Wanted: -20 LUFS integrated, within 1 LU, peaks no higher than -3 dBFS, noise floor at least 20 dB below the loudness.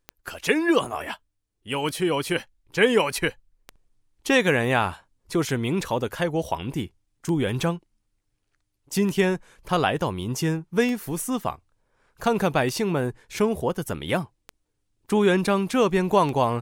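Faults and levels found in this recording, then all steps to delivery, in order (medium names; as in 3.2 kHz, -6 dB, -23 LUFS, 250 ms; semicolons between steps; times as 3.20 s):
clicks found 10; loudness -24.5 LUFS; peak level -6.0 dBFS; loudness target -20.0 LUFS
-> de-click; trim +4.5 dB; peak limiter -3 dBFS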